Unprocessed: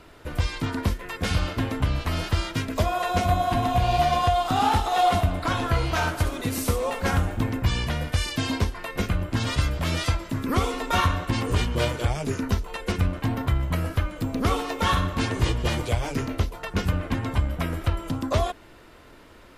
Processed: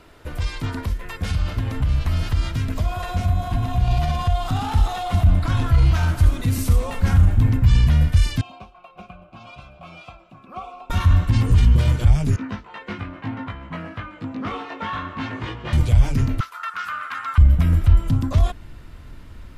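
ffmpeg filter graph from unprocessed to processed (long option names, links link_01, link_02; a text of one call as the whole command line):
ffmpeg -i in.wav -filter_complex "[0:a]asettb=1/sr,asplit=3[link_01][link_02][link_03];[link_01]atrim=end=0.814[link_04];[link_02]atrim=start=0.81:end=3.88,asetpts=PTS-STARTPTS,afade=type=in:duration=0.004:curve=qsin,afade=type=out:start_time=3.066:duration=0.004:curve=qsin,acompressor=threshold=-25dB:ratio=5:attack=3.2:release=140:knee=1:detection=peak,aecho=1:1:640:0.224,atrim=end_sample=135387[link_05];[link_03]atrim=start=3.876[link_06];[link_04][link_05]acrossfade=duration=0.004:curve1=hsin:curve2=qsin[link_07];[link_07][link_06]acrossfade=duration=0.004:curve1=qsin:curve2=hsin,asettb=1/sr,asplit=3[link_08][link_09][link_10];[link_08]atrim=end=8.414[link_11];[link_09]atrim=start=8.41:end=10.9,asetpts=PTS-STARTPTS,afade=type=in:duration=0.004:curve=qsin,afade=type=out:start_time=2.486:duration=0.004:curve=qsin,asplit=3[link_12][link_13][link_14];[link_12]bandpass=frequency=730:width_type=q:width=8,volume=0dB[link_15];[link_13]bandpass=frequency=1090:width_type=q:width=8,volume=-6dB[link_16];[link_14]bandpass=frequency=2440:width_type=q:width=8,volume=-9dB[link_17];[link_15][link_16][link_17]amix=inputs=3:normalize=0,bandreject=frequency=1800:width=14,aecho=1:1:5.4:0.59,atrim=end_sample=109809[link_18];[link_10]atrim=start=10.896[link_19];[link_11][link_18]acrossfade=duration=0.004:curve1=hsin:curve2=qsin[link_20];[link_20][link_19]acrossfade=duration=0.004:curve1=qsin:curve2=hsin,asettb=1/sr,asplit=3[link_21][link_22][link_23];[link_21]atrim=end=12.364[link_24];[link_22]atrim=start=12.36:end=15.73,asetpts=PTS-STARTPTS,afade=type=in:duration=0.004:curve=qsin,afade=type=out:start_time=3.366:duration=0.004:curve=qsin,highpass=240,lowpass=2300,lowshelf=frequency=430:gain=-9,asplit=2[link_25][link_26];[link_26]adelay=19,volume=-2dB[link_27];[link_25][link_27]amix=inputs=2:normalize=0,atrim=end_sample=148617[link_28];[link_23]atrim=start=15.726[link_29];[link_24][link_28]acrossfade=duration=0.004:curve1=hsin:curve2=qsin[link_30];[link_30][link_29]acrossfade=duration=0.004:curve1=qsin:curve2=hsin,asettb=1/sr,asplit=3[link_31][link_32][link_33];[link_31]atrim=end=16.404[link_34];[link_32]atrim=start=16.4:end=17.38,asetpts=PTS-STARTPTS,afade=type=in:duration=0.004:curve=qsin,afade=type=out:start_time=0.976:duration=0.004:curve=qsin,acrossover=split=4800[link_35][link_36];[link_36]acompressor=threshold=-49dB:ratio=4:attack=1:release=60[link_37];[link_35][link_37]amix=inputs=2:normalize=0,highpass=frequency=1300:width_type=q:width=8.4[link_38];[link_33]atrim=start=17.376[link_39];[link_34][link_38]acrossfade=duration=0.004:curve1=hsin:curve2=qsin[link_40];[link_40][link_39]acrossfade=duration=0.004:curve1=qsin:curve2=hsin,alimiter=limit=-19dB:level=0:latency=1:release=11,asubboost=boost=7:cutoff=160" out.wav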